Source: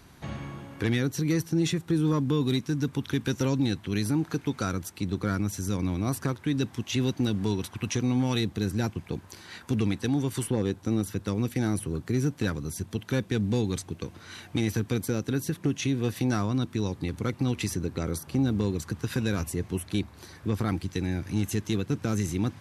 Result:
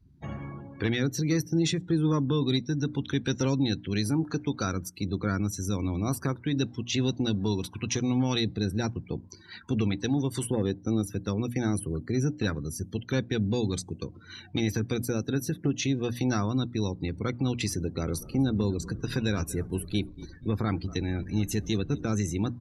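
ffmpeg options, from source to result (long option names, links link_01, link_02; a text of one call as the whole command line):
ffmpeg -i in.wav -filter_complex "[0:a]asplit=3[link_01][link_02][link_03];[link_01]afade=type=out:start_time=18.01:duration=0.02[link_04];[link_02]asplit=7[link_05][link_06][link_07][link_08][link_09][link_10][link_11];[link_06]adelay=239,afreqshift=-37,volume=-16dB[link_12];[link_07]adelay=478,afreqshift=-74,volume=-20dB[link_13];[link_08]adelay=717,afreqshift=-111,volume=-24dB[link_14];[link_09]adelay=956,afreqshift=-148,volume=-28dB[link_15];[link_10]adelay=1195,afreqshift=-185,volume=-32.1dB[link_16];[link_11]adelay=1434,afreqshift=-222,volume=-36.1dB[link_17];[link_05][link_12][link_13][link_14][link_15][link_16][link_17]amix=inputs=7:normalize=0,afade=type=in:start_time=18.01:duration=0.02,afade=type=out:start_time=22.04:duration=0.02[link_18];[link_03]afade=type=in:start_time=22.04:duration=0.02[link_19];[link_04][link_18][link_19]amix=inputs=3:normalize=0,afftdn=noise_reduction=31:noise_floor=-44,equalizer=frequency=4700:width=1.8:gain=5,bandreject=frequency=60:width_type=h:width=6,bandreject=frequency=120:width_type=h:width=6,bandreject=frequency=180:width_type=h:width=6,bandreject=frequency=240:width_type=h:width=6,bandreject=frequency=300:width_type=h:width=6" out.wav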